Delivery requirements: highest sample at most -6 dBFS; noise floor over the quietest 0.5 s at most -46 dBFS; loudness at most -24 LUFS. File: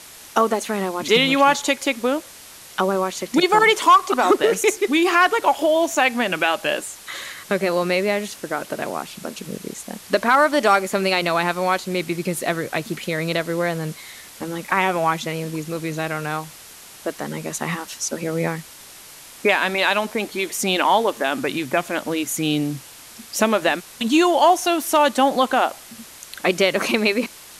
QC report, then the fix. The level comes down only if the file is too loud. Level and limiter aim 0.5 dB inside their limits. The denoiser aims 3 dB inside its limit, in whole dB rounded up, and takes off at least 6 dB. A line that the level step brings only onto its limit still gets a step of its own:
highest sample -4.5 dBFS: fail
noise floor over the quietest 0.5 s -42 dBFS: fail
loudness -20.0 LUFS: fail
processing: trim -4.5 dB

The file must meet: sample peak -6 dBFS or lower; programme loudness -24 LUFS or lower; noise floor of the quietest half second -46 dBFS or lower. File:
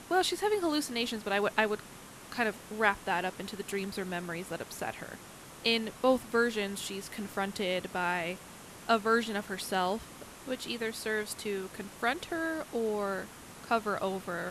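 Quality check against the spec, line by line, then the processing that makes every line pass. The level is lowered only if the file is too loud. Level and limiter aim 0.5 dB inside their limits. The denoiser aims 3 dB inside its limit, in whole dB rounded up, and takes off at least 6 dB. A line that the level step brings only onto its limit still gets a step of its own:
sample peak -10.0 dBFS: pass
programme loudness -32.5 LUFS: pass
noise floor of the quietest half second -49 dBFS: pass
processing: none needed

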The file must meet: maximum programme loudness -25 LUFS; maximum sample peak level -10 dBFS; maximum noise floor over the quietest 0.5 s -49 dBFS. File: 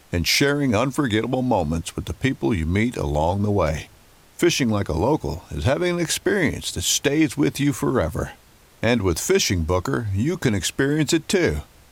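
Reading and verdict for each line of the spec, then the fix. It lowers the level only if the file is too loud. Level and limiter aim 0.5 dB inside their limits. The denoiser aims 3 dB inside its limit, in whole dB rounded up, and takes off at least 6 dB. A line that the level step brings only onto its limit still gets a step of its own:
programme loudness -21.5 LUFS: fail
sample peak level -8.0 dBFS: fail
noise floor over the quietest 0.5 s -51 dBFS: pass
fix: trim -4 dB

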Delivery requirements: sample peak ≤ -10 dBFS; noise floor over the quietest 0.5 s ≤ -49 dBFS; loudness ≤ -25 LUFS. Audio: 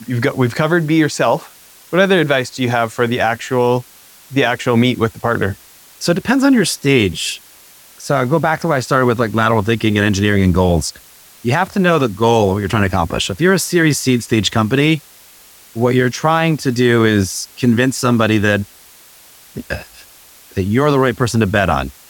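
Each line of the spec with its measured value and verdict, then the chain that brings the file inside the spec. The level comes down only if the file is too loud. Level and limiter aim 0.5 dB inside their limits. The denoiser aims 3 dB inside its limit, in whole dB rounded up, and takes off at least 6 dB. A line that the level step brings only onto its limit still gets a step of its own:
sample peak -2.0 dBFS: fail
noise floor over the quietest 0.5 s -44 dBFS: fail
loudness -15.5 LUFS: fail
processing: trim -10 dB

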